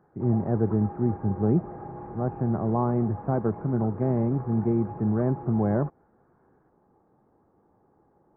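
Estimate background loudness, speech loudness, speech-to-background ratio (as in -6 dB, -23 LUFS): -40.0 LUFS, -26.5 LUFS, 13.5 dB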